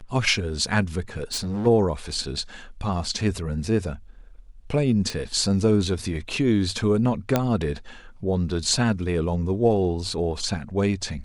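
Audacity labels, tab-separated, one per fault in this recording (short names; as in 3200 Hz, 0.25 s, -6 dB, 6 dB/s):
1.320000	1.670000	clipped -24.5 dBFS
5.100000	5.100000	pop
7.360000	7.360000	pop -6 dBFS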